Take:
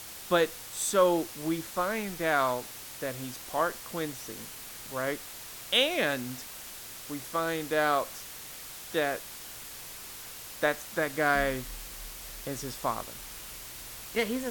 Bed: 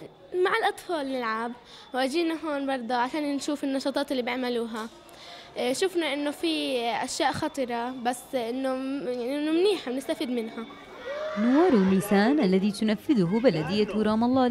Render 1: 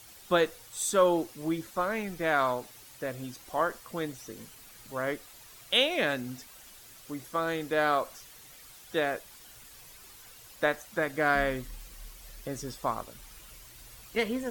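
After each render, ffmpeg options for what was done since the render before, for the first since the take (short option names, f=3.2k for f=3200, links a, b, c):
-af "afftdn=nr=10:nf=-44"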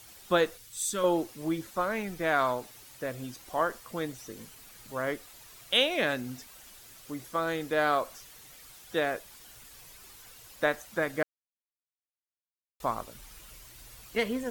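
-filter_complex "[0:a]asettb=1/sr,asplit=3[a][b][c];[a]atrim=end=0.574[d];[b]atrim=start=0.57:end=1.04,asetpts=PTS-STARTPTS,afade=t=in:d=0.004:c=qsin,afade=t=out:st=0.466:d=0.004:c=qsin,equalizer=f=730:t=o:w=2:g=-12.5[e];[c]atrim=start=1.036[f];[d][e]acrossfade=d=0.004:c1=hsin:c2=qsin[g];[g][f]acrossfade=d=0.004:c1=qsin:c2=hsin,asplit=3[h][i][j];[h]atrim=end=11.23,asetpts=PTS-STARTPTS,afade=t=out:st=11.226:d=0.004:c=hsin[k];[i]atrim=start=11.23:end=12.8,asetpts=PTS-STARTPTS,volume=0[l];[j]atrim=start=12.8,asetpts=PTS-STARTPTS,afade=t=in:d=0.004:c=hsin[m];[k][l][m]concat=n=3:v=0:a=1"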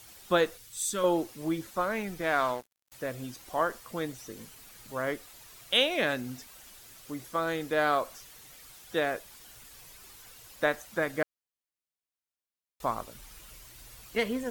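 -filter_complex "[0:a]asettb=1/sr,asplit=3[a][b][c];[a]atrim=end=2.214[d];[b]atrim=start=2.21:end=2.92,asetpts=PTS-STARTPTS,afade=t=in:d=0.004:c=qsin,afade=t=out:st=0.706:d=0.004:c=qsin,aeval=exprs='sgn(val(0))*max(abs(val(0))-0.00794,0)':c=same[e];[c]atrim=start=2.916[f];[d][e]acrossfade=d=0.004:c1=hsin:c2=qsin[g];[g][f]acrossfade=d=0.004:c1=qsin:c2=hsin"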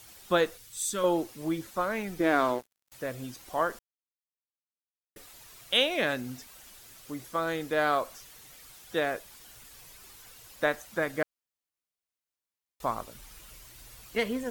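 -filter_complex "[0:a]asettb=1/sr,asplit=3[a][b][c];[a]atrim=end=2.174[d];[b]atrim=start=2.17:end=2.59,asetpts=PTS-STARTPTS,afade=t=in:d=0.004:c=qsin,afade=t=out:st=0.416:d=0.004:c=qsin,equalizer=f=320:w=1.5:g=12[e];[c]atrim=start=2.586[f];[d][e]acrossfade=d=0.004:c1=hsin:c2=qsin[g];[g][f]acrossfade=d=0.004:c1=qsin:c2=hsin,asplit=3[h][i][j];[h]atrim=end=3.79,asetpts=PTS-STARTPTS,afade=t=out:st=3.786:d=0.004:c=hsin[k];[i]atrim=start=3.79:end=5.16,asetpts=PTS-STARTPTS,volume=0[l];[j]atrim=start=5.16,asetpts=PTS-STARTPTS,afade=t=in:d=0.004:c=hsin[m];[k][l][m]concat=n=3:v=0:a=1"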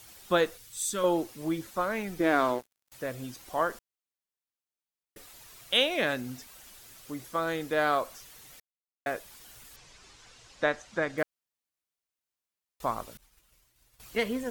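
-filter_complex "[0:a]asettb=1/sr,asplit=3[a][b][c];[a]atrim=end=9.764[d];[b]atrim=start=9.76:end=11.18,asetpts=PTS-STARTPTS,afade=t=in:d=0.004:c=qsin,afade=t=out:st=1.416:d=0.004:c=qsin,lowpass=f=7.1k:w=0.5412,lowpass=f=7.1k:w=1.3066[e];[c]atrim=start=11.176[f];[d][e]acrossfade=d=0.004:c1=hsin:c2=qsin[g];[g][f]acrossfade=d=0.004:c1=qsin:c2=hsin,asettb=1/sr,asplit=3[h][i][j];[h]atrim=end=13.174[k];[i]atrim=start=13.17:end=14,asetpts=PTS-STARTPTS,afade=t=in:d=0.004:c=qsin,afade=t=out:st=0.826:d=0.004:c=qsin,agate=range=-33dB:threshold=-40dB:ratio=3:release=100:detection=peak[l];[j]atrim=start=13.996[m];[k][l]acrossfade=d=0.004:c1=hsin:c2=qsin[n];[n][m]acrossfade=d=0.004:c1=qsin:c2=hsin,asplit=3[o][p][q];[o]atrim=end=8.6,asetpts=PTS-STARTPTS,afade=t=out:st=8.596:d=0.004:c=hsin[r];[p]atrim=start=8.6:end=9.06,asetpts=PTS-STARTPTS,volume=0[s];[q]atrim=start=9.06,asetpts=PTS-STARTPTS,afade=t=in:d=0.004:c=hsin[t];[r][s][t]concat=n=3:v=0:a=1"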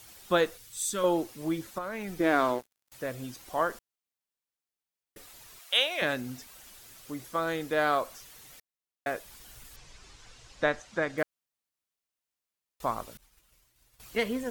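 -filter_complex "[0:a]asettb=1/sr,asplit=3[a][b][c];[a]atrim=end=1.784[d];[b]atrim=start=1.78:end=2.2,asetpts=PTS-STARTPTS,afade=t=in:d=0.004:c=qsin,afade=t=out:st=0.416:d=0.004:c=qsin,acompressor=threshold=-31dB:ratio=10:attack=3.2:release=140:knee=1:detection=peak[e];[c]atrim=start=2.196[f];[d][e]acrossfade=d=0.004:c1=hsin:c2=qsin[g];[g][f]acrossfade=d=0.004:c1=qsin:c2=hsin,asettb=1/sr,asplit=3[h][i][j];[h]atrim=end=5.594[k];[i]atrim=start=5.59:end=6.02,asetpts=PTS-STARTPTS,afade=t=in:d=0.004:c=qsin,afade=t=out:st=0.426:d=0.004:c=qsin,highpass=670[l];[j]atrim=start=6.016[m];[k][l]acrossfade=d=0.004:c1=hsin:c2=qsin[n];[n][m]acrossfade=d=0.004:c1=qsin:c2=hsin,asettb=1/sr,asplit=3[o][p][q];[o]atrim=end=9.274[r];[p]atrim=start=9.27:end=10.8,asetpts=PTS-STARTPTS,afade=t=in:d=0.004:c=qsin,afade=t=out:st=1.526:d=0.004:c=qsin,lowshelf=f=100:g=9.5[s];[q]atrim=start=10.796[t];[r][s]acrossfade=d=0.004:c1=hsin:c2=qsin[u];[u][t]acrossfade=d=0.004:c1=qsin:c2=hsin"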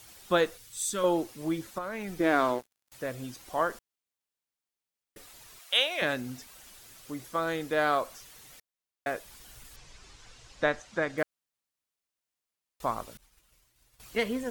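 -af "equalizer=f=14k:w=3.3:g=-4.5"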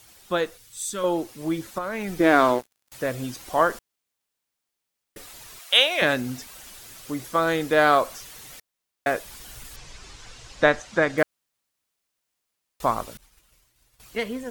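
-af "dynaudnorm=f=250:g=13:m=9dB"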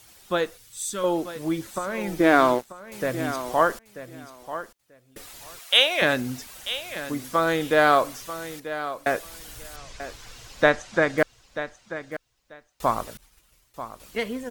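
-af "aecho=1:1:938|1876:0.237|0.0379"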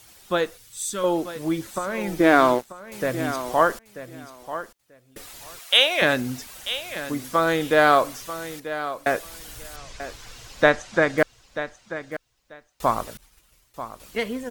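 -af "volume=1.5dB,alimiter=limit=-3dB:level=0:latency=1"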